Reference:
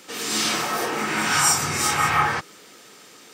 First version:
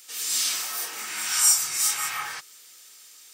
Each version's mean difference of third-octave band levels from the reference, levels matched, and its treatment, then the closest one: 10.5 dB: pre-emphasis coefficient 0.97; gain +2 dB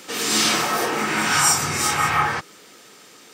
1.5 dB: vocal rider 2 s; gain +1.5 dB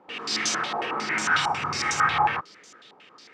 7.5 dB: stepped low-pass 11 Hz 860–6500 Hz; gain -7 dB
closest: second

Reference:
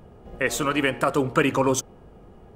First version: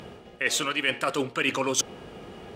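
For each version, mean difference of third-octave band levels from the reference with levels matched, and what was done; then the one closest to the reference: 7.5 dB: weighting filter D; reverse; compressor 6:1, threshold -32 dBFS, peak gain reduction 19.5 dB; reverse; gain +8 dB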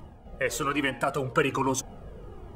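3.0 dB: reverse; upward compressor, threshold -30 dBFS; reverse; cascading flanger falling 1.2 Hz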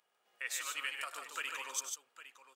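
15.0 dB: Bessel high-pass 2600 Hz, order 2; on a send: tapped delay 99/148/807 ms -9.5/-4.5/-13.5 dB; on the sum: gain -9 dB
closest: second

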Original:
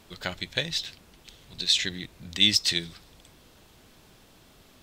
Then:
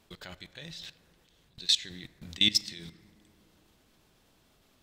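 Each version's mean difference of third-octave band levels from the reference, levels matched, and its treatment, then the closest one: 5.0 dB: level quantiser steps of 22 dB; plate-style reverb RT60 3 s, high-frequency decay 0.25×, DRR 15 dB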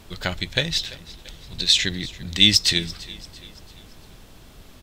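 2.0 dB: low shelf 87 Hz +12 dB; on a send: feedback echo 0.339 s, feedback 48%, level -19.5 dB; on the sum: gain +5.5 dB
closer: second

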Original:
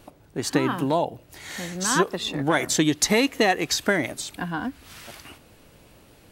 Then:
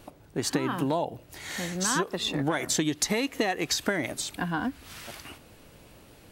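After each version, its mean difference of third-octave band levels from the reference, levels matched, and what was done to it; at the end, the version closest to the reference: 3.5 dB: compressor 6:1, threshold -23 dBFS, peak gain reduction 8.5 dB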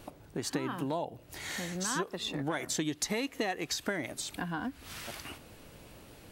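5.5 dB: compressor 2.5:1, threshold -36 dBFS, peak gain reduction 14 dB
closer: first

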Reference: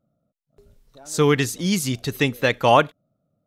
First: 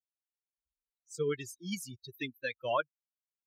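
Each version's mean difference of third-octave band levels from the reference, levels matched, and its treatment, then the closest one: 12.5 dB: per-bin expansion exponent 3; HPF 170 Hz 12 dB/oct; cascading flanger falling 1.3 Hz; gain -7.5 dB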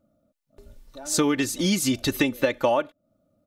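5.0 dB: comb 3.4 ms, depth 62%; dynamic EQ 490 Hz, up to +7 dB, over -27 dBFS, Q 0.76; compressor 10:1, threshold -23 dBFS, peak gain reduction 19.5 dB; gain +4 dB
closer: second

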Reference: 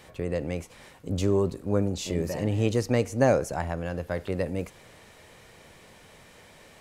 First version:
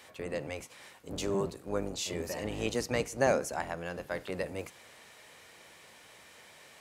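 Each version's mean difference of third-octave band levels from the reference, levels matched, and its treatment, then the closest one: 5.5 dB: octaver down 1 oct, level +4 dB; HPF 890 Hz 6 dB/oct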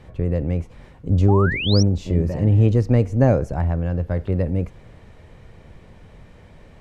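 8.5 dB: RIAA curve playback; painted sound rise, 1.28–1.83, 730–6000 Hz -26 dBFS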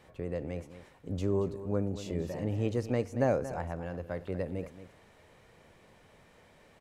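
3.5 dB: high shelf 2700 Hz -9 dB; echo 0.229 s -13 dB; gain -6 dB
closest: third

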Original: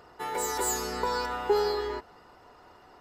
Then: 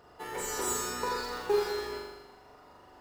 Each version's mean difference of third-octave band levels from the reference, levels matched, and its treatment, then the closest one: 4.0 dB: in parallel at -12 dB: decimation with a swept rate 19×, swing 60% 0.71 Hz; on the sum: flutter echo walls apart 7.1 m, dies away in 1.1 s; gain -6 dB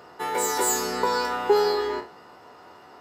1.0 dB: spectral trails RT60 0.33 s; HPF 130 Hz 12 dB/oct; gain +5 dB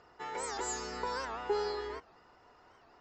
2.5 dB: rippled Chebyshev low-pass 7500 Hz, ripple 3 dB; record warp 78 rpm, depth 160 cents; gain -5 dB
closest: second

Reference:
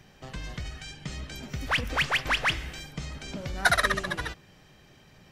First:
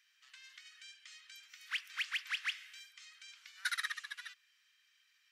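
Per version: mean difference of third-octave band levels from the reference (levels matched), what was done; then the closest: 15.0 dB: Bessel high-pass 2500 Hz, order 8; high shelf 3400 Hz -8 dB; gain -4.5 dB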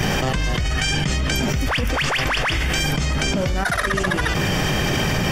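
10.5 dB: notch 4000 Hz, Q 8; fast leveller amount 100%; gain -2.5 dB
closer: second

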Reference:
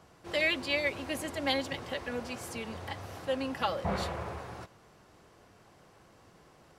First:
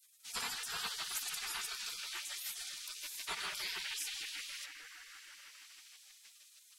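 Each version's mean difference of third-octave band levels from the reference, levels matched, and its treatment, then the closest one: 18.5 dB: darkening echo 0.157 s, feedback 83%, low-pass 1600 Hz, level -4 dB; spectral gate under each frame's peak -30 dB weak; low shelf 320 Hz -6.5 dB; in parallel at -1 dB: limiter -45.5 dBFS, peak gain reduction 9 dB; on the sum: gain +8 dB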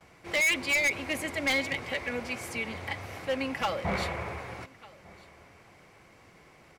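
2.5 dB: bell 2200 Hz +12.5 dB 0.37 oct; on a send: echo 1.199 s -23.5 dB; on the sum: hard clip -24 dBFS, distortion -7 dB; gate with hold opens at -50 dBFS; gain +1.5 dB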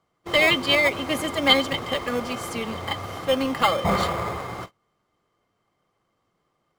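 7.5 dB: bell 72 Hz -6 dB 0.69 oct; gate -48 dBFS, range -24 dB; in parallel at -6 dB: sample-and-hold 15×; on the sum: small resonant body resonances 1200/2100/3100 Hz, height 15 dB, ringing for 55 ms; gain +6.5 dB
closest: second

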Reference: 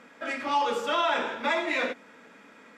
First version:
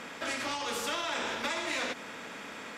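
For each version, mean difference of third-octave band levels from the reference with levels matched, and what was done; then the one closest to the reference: 11.0 dB: compressor, threshold -28 dBFS, peak gain reduction 7.5 dB; spectral compressor 2:1; gain -1.5 dB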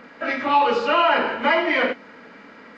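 2.5 dB: nonlinear frequency compression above 2100 Hz 1.5:1; low shelf 81 Hz +7.5 dB; gain +8 dB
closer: second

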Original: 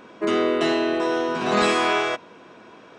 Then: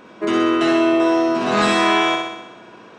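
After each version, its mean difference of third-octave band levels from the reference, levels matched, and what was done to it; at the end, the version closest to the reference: 3.0 dB: flutter echo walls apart 10.9 m, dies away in 0.92 s; gain +1.5 dB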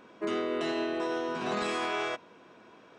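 1.0 dB: limiter -14 dBFS, peak gain reduction 6.5 dB; gain -8.5 dB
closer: second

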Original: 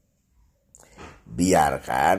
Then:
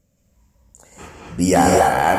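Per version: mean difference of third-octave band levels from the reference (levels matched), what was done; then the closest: 5.0 dB: non-linear reverb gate 0.28 s rising, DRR -1.5 dB; gain +2.5 dB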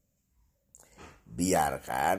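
1.0 dB: high shelf 9000 Hz +9.5 dB; gain -8 dB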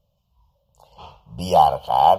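7.5 dB: EQ curve 160 Hz 0 dB, 280 Hz -20 dB, 560 Hz +3 dB, 1000 Hz +9 dB, 1900 Hz -28 dB, 3000 Hz +8 dB, 5000 Hz 0 dB, 7600 Hz -19 dB, 12000 Hz -3 dB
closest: second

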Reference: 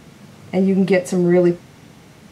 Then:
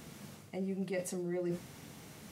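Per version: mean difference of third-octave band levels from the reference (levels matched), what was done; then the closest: 9.5 dB: high shelf 7400 Hz +12 dB; notches 60/120/180 Hz; reverse; compressor 5:1, threshold -28 dBFS, peak gain reduction 15.5 dB; reverse; gain -7.5 dB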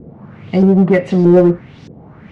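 4.5 dB: low shelf 290 Hz +8.5 dB; LFO low-pass saw up 1.6 Hz 400–5600 Hz; in parallel at -4 dB: hard clip -10 dBFS, distortion -9 dB; on the sum: gain -3.5 dB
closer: second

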